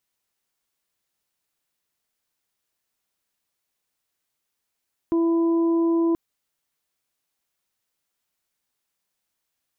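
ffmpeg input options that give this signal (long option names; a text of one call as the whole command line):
ffmpeg -f lavfi -i "aevalsrc='0.133*sin(2*PI*333*t)+0.0141*sin(2*PI*666*t)+0.02*sin(2*PI*999*t)':duration=1.03:sample_rate=44100" out.wav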